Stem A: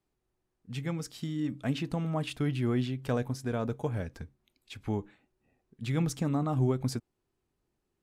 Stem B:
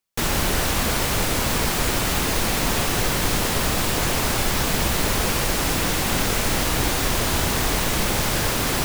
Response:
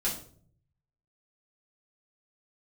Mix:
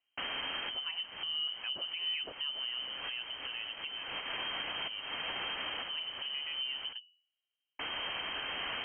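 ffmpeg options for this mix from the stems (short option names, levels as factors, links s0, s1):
-filter_complex "[0:a]bandreject=f=84.44:t=h:w=4,bandreject=f=168.88:t=h:w=4,bandreject=f=253.32:t=h:w=4,bandreject=f=337.76:t=h:w=4,bandreject=f=422.2:t=h:w=4,bandreject=f=506.64:t=h:w=4,bandreject=f=591.08:t=h:w=4,volume=0.891,afade=t=out:st=2.18:d=0.53:silence=0.354813,asplit=2[s0][s1];[1:a]highshelf=f=2200:g=9.5,volume=0.224,asplit=3[s2][s3][s4];[s2]atrim=end=6.93,asetpts=PTS-STARTPTS,afade=t=out:st=6.926:d=0.004:c=hsin[s5];[s3]atrim=start=6.93:end=7.79,asetpts=PTS-STARTPTS,volume=0[s6];[s4]atrim=start=7.79,asetpts=PTS-STARTPTS,afade=t=in:d=0.004:c=hsin[s7];[s5][s6][s7]concat=n=3:v=0:a=1[s8];[s1]apad=whole_len=390113[s9];[s8][s9]sidechaincompress=threshold=0.00316:ratio=12:attack=5.8:release=241[s10];[s0][s10]amix=inputs=2:normalize=0,lowpass=f=2700:t=q:w=0.5098,lowpass=f=2700:t=q:w=0.6013,lowpass=f=2700:t=q:w=0.9,lowpass=f=2700:t=q:w=2.563,afreqshift=-3200,equalizer=f=280:w=6.5:g=3.5,alimiter=level_in=1.68:limit=0.0631:level=0:latency=1:release=127,volume=0.596"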